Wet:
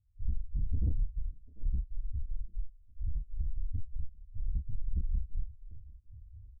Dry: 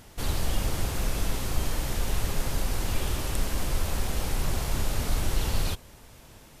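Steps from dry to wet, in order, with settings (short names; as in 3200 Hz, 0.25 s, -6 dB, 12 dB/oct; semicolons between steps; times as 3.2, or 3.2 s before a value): Doppler pass-by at 2.76, 19 m/s, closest 15 m; resonant low shelf 160 Hz +12 dB, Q 1.5; negative-ratio compressor -25 dBFS, ratio -1; step gate "..xx.xxxxx.x." 141 bpm -24 dB; loudest bins only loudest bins 1; soft clip -31 dBFS, distortion -13 dB; doubler 29 ms -5 dB; thinning echo 0.743 s, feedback 63%, high-pass 770 Hz, level -8.5 dB; gain +4.5 dB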